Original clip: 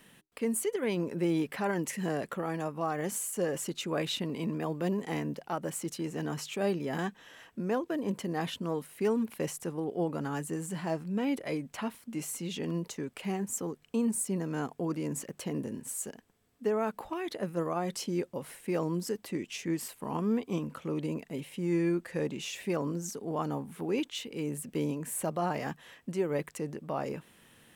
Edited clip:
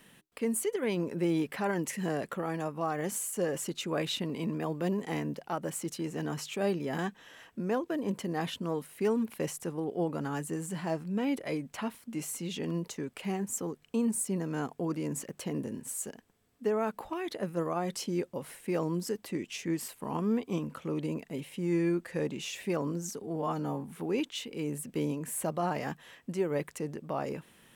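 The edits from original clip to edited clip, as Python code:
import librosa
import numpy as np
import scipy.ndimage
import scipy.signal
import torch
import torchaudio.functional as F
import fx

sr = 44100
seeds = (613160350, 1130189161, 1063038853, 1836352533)

y = fx.edit(x, sr, fx.stretch_span(start_s=23.22, length_s=0.41, factor=1.5), tone=tone)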